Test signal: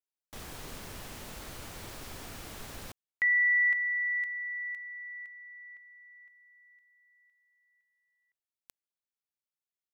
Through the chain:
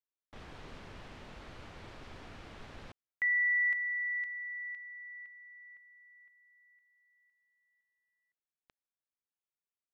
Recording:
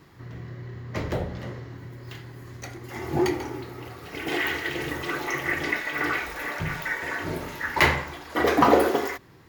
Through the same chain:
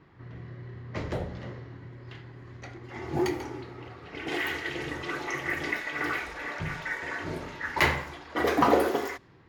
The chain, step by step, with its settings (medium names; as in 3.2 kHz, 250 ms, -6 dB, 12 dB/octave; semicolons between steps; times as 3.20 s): level-controlled noise filter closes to 2.6 kHz, open at -22 dBFS; trim -4 dB